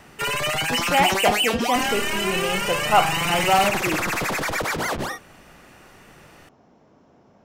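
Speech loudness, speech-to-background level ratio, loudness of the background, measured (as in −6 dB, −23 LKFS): −23.5 LKFS, −0.5 dB, −23.0 LKFS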